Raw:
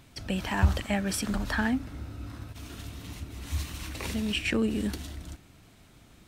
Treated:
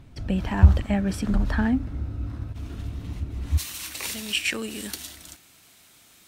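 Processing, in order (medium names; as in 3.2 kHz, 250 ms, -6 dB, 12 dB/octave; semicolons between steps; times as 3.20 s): tilt EQ -2.5 dB/octave, from 3.57 s +3.5 dB/octave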